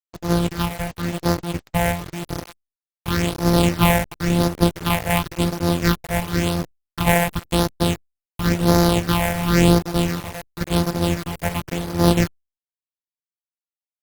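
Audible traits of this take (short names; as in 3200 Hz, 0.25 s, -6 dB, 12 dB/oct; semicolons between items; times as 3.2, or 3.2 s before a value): a buzz of ramps at a fixed pitch in blocks of 256 samples; phasing stages 6, 0.94 Hz, lowest notch 310–2700 Hz; a quantiser's noise floor 6-bit, dither none; Opus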